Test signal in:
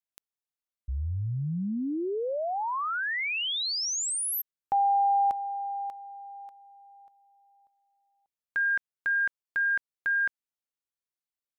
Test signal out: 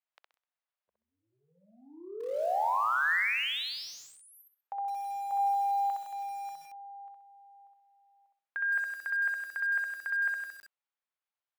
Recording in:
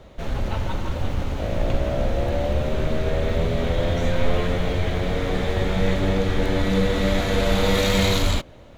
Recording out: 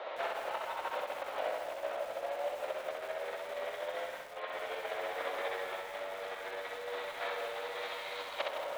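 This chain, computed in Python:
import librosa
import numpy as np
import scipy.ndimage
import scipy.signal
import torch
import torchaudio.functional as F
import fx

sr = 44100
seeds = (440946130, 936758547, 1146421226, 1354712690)

p1 = fx.over_compress(x, sr, threshold_db=-32.0, ratio=-1.0)
p2 = np.clip(p1, -10.0 ** (-20.0 / 20.0), 10.0 ** (-20.0 / 20.0))
p3 = scipy.signal.sosfilt(scipy.signal.butter(4, 590.0, 'highpass', fs=sr, output='sos'), p2)
p4 = fx.air_absorb(p3, sr, metres=330.0)
p5 = p4 + fx.echo_feedback(p4, sr, ms=64, feedback_pct=30, wet_db=-3.0, dry=0)
p6 = fx.dynamic_eq(p5, sr, hz=1800.0, q=4.0, threshold_db=-43.0, ratio=4.0, max_db=3)
p7 = fx.echo_crushed(p6, sr, ms=162, feedback_pct=35, bits=8, wet_db=-8.0)
y = p7 * 10.0 ** (1.5 / 20.0)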